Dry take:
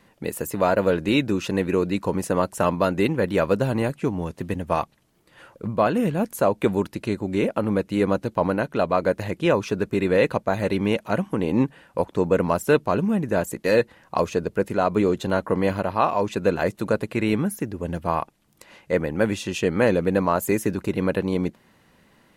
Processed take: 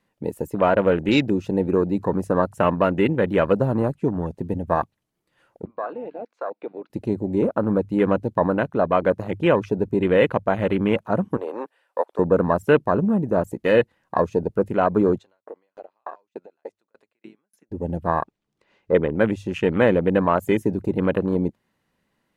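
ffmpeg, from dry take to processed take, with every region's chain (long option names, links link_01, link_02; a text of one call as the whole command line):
ffmpeg -i in.wav -filter_complex "[0:a]asettb=1/sr,asplit=3[link_01][link_02][link_03];[link_01]atrim=end=5.654[link_04];[link_02]atrim=start=5.65:end=6.9,asetpts=PTS-STARTPTS,afade=type=in:duration=0.004:curve=qsin,afade=type=out:start_time=1.246:duration=0.004:curve=qsin,highpass=frequency=390:width=0.5412,highpass=frequency=390:width=1.3066,equalizer=frequency=390:width_type=q:width=4:gain=-8,equalizer=frequency=570:width_type=q:width=4:gain=-6,equalizer=frequency=900:width_type=q:width=4:gain=-5,equalizer=frequency=1800:width_type=q:width=4:gain=-6,equalizer=frequency=3200:width_type=q:width=4:gain=-8,lowpass=frequency=3700:width=0.5412,lowpass=frequency=3700:width=1.3066,acompressor=threshold=-30dB:ratio=2:attack=3.2:release=140:knee=1:detection=peak[link_05];[link_03]atrim=start=6.896[link_06];[link_04][link_05]acrossfade=duration=0.004:curve1=hsin:curve2=qsin[link_07];[link_07][link_06]acrossfade=duration=0.004:curve1=qsin:curve2=hsin,asettb=1/sr,asplit=3[link_08][link_09][link_10];[link_08]atrim=end=11.374[link_11];[link_09]atrim=start=11.37:end=12.19,asetpts=PTS-STARTPTS,afade=type=in:duration=0.004:curve=qsin,afade=type=out:start_time=0.816:duration=0.004:curve=qsin,highpass=frequency=470:width=0.5412,highpass=frequency=470:width=1.3066,bandreject=frequency=6600:width=12[link_12];[link_10]atrim=start=12.186[link_13];[link_11][link_12]acrossfade=duration=0.004:curve1=hsin:curve2=qsin[link_14];[link_14][link_13]acrossfade=duration=0.004:curve1=qsin:curve2=hsin,asettb=1/sr,asplit=3[link_15][link_16][link_17];[link_15]atrim=end=15.184[link_18];[link_16]atrim=start=15.18:end=17.72,asetpts=PTS-STARTPTS,afade=type=in:duration=0.004:curve=qsin,afade=type=out:start_time=2.536:duration=0.004:curve=qsin,acompressor=threshold=-24dB:ratio=4:attack=3.2:release=140:knee=1:detection=peak,highpass=450,lowpass=7300,aeval=exprs='val(0)*pow(10,-38*if(lt(mod(3.4*n/s,1),2*abs(3.4)/1000),1-mod(3.4*n/s,1)/(2*abs(3.4)/1000),(mod(3.4*n/s,1)-2*abs(3.4)/1000)/(1-2*abs(3.4)/1000))/20)':channel_layout=same[link_19];[link_17]atrim=start=17.716[link_20];[link_18][link_19]acrossfade=duration=0.004:curve1=hsin:curve2=qsin[link_21];[link_21][link_20]acrossfade=duration=0.004:curve1=qsin:curve2=hsin,asettb=1/sr,asplit=3[link_22][link_23][link_24];[link_22]atrim=end=18.224[link_25];[link_23]atrim=start=18.22:end=19.15,asetpts=PTS-STARTPTS,afade=type=in:duration=0.004:curve=qsin,afade=type=out:start_time=0.926:duration=0.004:curve=qsin,lowpass=5700,equalizer=frequency=410:width_type=o:width=0.3:gain=7,acrossover=split=3700[link_26][link_27];[link_27]acompressor=threshold=-57dB:ratio=4:attack=1:release=60[link_28];[link_26][link_28]amix=inputs=2:normalize=0[link_29];[link_24]atrim=start=19.146[link_30];[link_25][link_29]acrossfade=duration=0.004:curve1=hsin:curve2=qsin[link_31];[link_31][link_30]acrossfade=duration=0.004:curve1=qsin:curve2=hsin,bandreject=frequency=50:width_type=h:width=6,bandreject=frequency=100:width_type=h:width=6,afwtdn=0.0282,volume=2dB" out.wav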